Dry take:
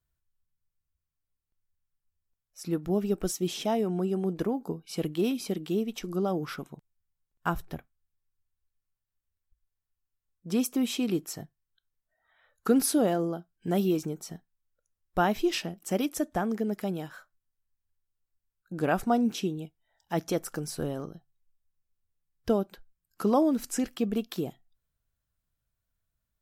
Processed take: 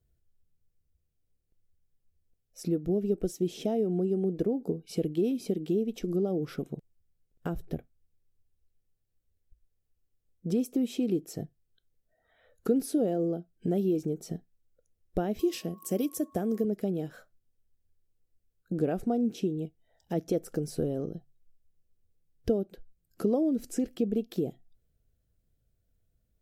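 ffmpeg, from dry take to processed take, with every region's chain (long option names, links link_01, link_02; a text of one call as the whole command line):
ffmpeg -i in.wav -filter_complex "[0:a]asettb=1/sr,asplit=3[link_01][link_02][link_03];[link_01]atrim=end=15.394[link_04];[link_02]atrim=start=15.39:end=16.65,asetpts=PTS-STARTPTS,afade=type=in:duration=0.004:curve=qsin,afade=type=out:start_time=1.256:duration=0.004:curve=qsin,aemphasis=mode=production:type=50kf,aeval=exprs='val(0)+0.00708*sin(2*PI*1100*n/s)':channel_layout=same,highpass=73[link_05];[link_03]atrim=start=16.646[link_06];[link_04][link_05]acrossfade=duration=0.004:curve1=hsin:curve2=qsin[link_07];[link_07][link_06]acrossfade=duration=0.004:curve1=qsin:curve2=hsin,equalizer=frequency=580:width_type=o:width=0.33:gain=-8.5,acompressor=threshold=-42dB:ratio=2.5,lowshelf=frequency=740:width_type=q:width=3:gain=9.5" out.wav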